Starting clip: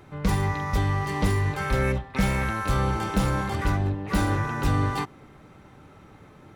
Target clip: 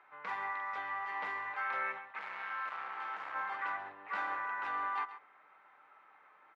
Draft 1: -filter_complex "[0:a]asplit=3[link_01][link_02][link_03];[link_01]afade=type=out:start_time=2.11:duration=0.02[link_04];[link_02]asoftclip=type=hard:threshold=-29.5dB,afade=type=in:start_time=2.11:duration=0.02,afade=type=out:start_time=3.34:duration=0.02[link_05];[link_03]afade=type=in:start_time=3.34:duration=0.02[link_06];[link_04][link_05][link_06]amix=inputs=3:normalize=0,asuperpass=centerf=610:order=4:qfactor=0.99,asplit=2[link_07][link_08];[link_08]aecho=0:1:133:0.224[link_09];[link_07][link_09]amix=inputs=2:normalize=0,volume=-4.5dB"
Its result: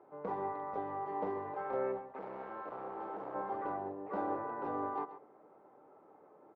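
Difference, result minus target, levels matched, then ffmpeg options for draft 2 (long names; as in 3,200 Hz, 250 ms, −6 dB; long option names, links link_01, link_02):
500 Hz band +16.0 dB
-filter_complex "[0:a]asplit=3[link_01][link_02][link_03];[link_01]afade=type=out:start_time=2.11:duration=0.02[link_04];[link_02]asoftclip=type=hard:threshold=-29.5dB,afade=type=in:start_time=2.11:duration=0.02,afade=type=out:start_time=3.34:duration=0.02[link_05];[link_03]afade=type=in:start_time=3.34:duration=0.02[link_06];[link_04][link_05][link_06]amix=inputs=3:normalize=0,asuperpass=centerf=1400:order=4:qfactor=0.99,asplit=2[link_07][link_08];[link_08]aecho=0:1:133:0.224[link_09];[link_07][link_09]amix=inputs=2:normalize=0,volume=-4.5dB"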